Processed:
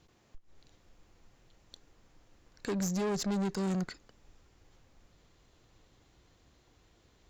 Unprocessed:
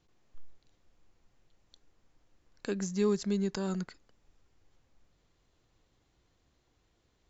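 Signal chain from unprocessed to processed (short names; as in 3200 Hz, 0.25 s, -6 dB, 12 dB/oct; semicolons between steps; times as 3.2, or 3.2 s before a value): limiter -25 dBFS, peak gain reduction 8 dB; tube stage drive 38 dB, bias 0.4; gain +9 dB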